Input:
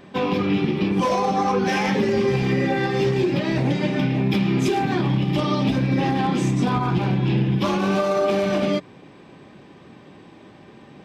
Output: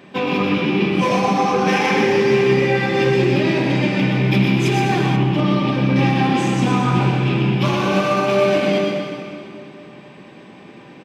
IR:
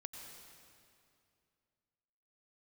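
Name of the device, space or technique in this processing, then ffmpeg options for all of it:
PA in a hall: -filter_complex "[0:a]highpass=120,equalizer=f=2500:t=o:w=0.54:g=5.5,aecho=1:1:124:0.501[s0];[1:a]atrim=start_sample=2205[s1];[s0][s1]afir=irnorm=-1:irlink=0,asettb=1/sr,asplit=3[s2][s3][s4];[s2]atrim=end=5.164[s5];[s3]atrim=start=5.16:end=5.96,asetpts=PTS-STARTPTS,afade=t=in:d=0.004:c=qsin,afade=t=out:st=0.796:d=0.004:c=qsin,highshelf=f=3700:g=-10.5[s6];[s4]atrim=start=5.956[s7];[s5][s6]acrossfade=d=0.004:c1=hsin:c2=qsin[s8];[s8][s7]acrossfade=d=0.004:c1=qsin:c2=hsin,volume=2.24"

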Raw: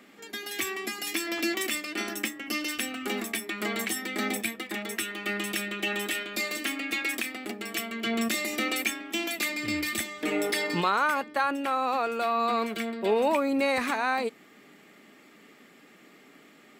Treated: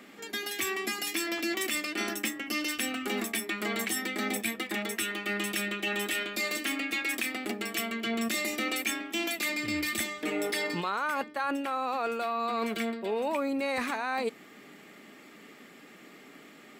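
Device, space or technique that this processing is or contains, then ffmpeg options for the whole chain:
compression on the reversed sound: -af "areverse,acompressor=threshold=0.0282:ratio=5,areverse,volume=1.41"

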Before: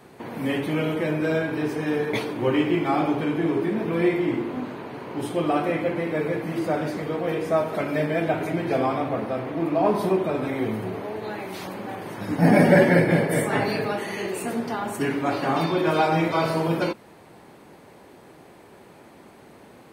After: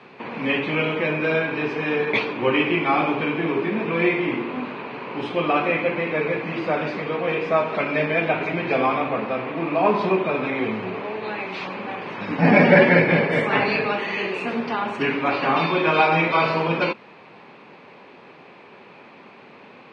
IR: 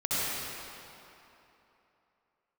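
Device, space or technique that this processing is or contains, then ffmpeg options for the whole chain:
kitchen radio: -af "highpass=180,equalizer=f=320:t=q:w=4:g=-6,equalizer=f=670:t=q:w=4:g=-3,equalizer=f=1100:t=q:w=4:g=4,equalizer=f=2500:t=q:w=4:g=10,lowpass=f=4500:w=0.5412,lowpass=f=4500:w=1.3066,volume=1.5"

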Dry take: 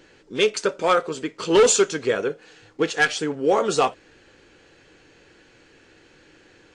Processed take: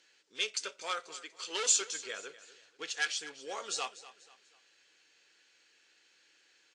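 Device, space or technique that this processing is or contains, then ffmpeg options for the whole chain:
piezo pickup straight into a mixer: -filter_complex "[0:a]asettb=1/sr,asplit=3[s0][s1][s2];[s0]atrim=end=1.144[s3];[s1]atrim=start=1.14:end=1.81,asetpts=PTS-STARTPTS,afade=t=in:d=0.004:c=qsin,afade=t=out:st=0.666:d=0.004:c=qsin,highpass=270[s4];[s2]atrim=start=1.806[s5];[s3][s4]acrossfade=d=0.004:c1=hsin:c2=qsin[s6];[s6][s5]acrossfade=d=0.004:c1=qsin:c2=hsin,lowpass=6200,aderivative,aecho=1:1:243|486|729:0.15|0.0554|0.0205,volume=0.891"

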